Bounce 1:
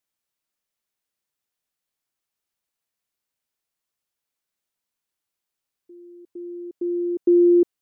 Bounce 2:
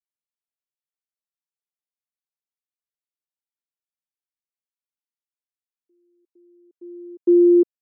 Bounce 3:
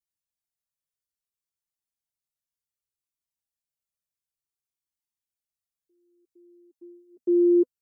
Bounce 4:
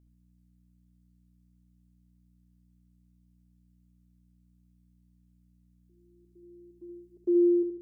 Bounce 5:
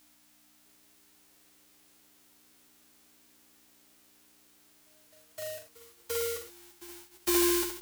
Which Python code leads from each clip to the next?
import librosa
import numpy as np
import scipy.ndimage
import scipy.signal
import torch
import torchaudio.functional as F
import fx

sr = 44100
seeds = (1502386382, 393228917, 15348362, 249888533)

y1 = scipy.signal.sosfilt(scipy.signal.butter(2, 270.0, 'highpass', fs=sr, output='sos'), x)
y1 = fx.upward_expand(y1, sr, threshold_db=-30.0, expansion=2.5)
y1 = F.gain(torch.from_numpy(y1), 3.0).numpy()
y2 = fx.bass_treble(y1, sr, bass_db=10, treble_db=9)
y2 = fx.notch_comb(y2, sr, f0_hz=250.0)
y2 = fx.comb_cascade(y2, sr, direction='falling', hz=0.61)
y3 = fx.fade_out_tail(y2, sr, length_s=0.73)
y3 = fx.add_hum(y3, sr, base_hz=60, snr_db=25)
y3 = fx.echo_feedback(y3, sr, ms=72, feedback_pct=43, wet_db=-7)
y4 = fx.envelope_flatten(y3, sr, power=0.1)
y4 = fx.doubler(y4, sr, ms=13.0, db=-7)
y4 = fx.echo_pitch(y4, sr, ms=649, semitones=5, count=2, db_per_echo=-6.0)